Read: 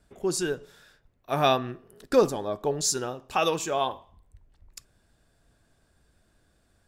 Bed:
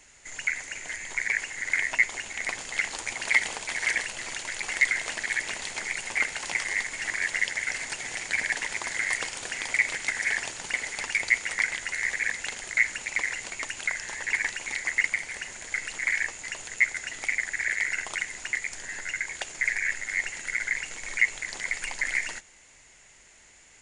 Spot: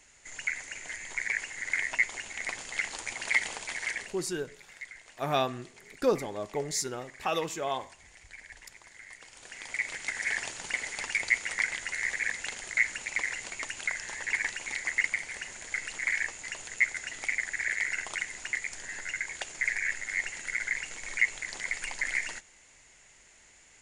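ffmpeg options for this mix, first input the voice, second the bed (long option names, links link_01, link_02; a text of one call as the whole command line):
ffmpeg -i stem1.wav -i stem2.wav -filter_complex "[0:a]adelay=3900,volume=-5.5dB[link_01];[1:a]volume=14dB,afade=type=out:start_time=3.66:duration=0.64:silence=0.141254,afade=type=in:start_time=9.2:duration=1.23:silence=0.125893[link_02];[link_01][link_02]amix=inputs=2:normalize=0" out.wav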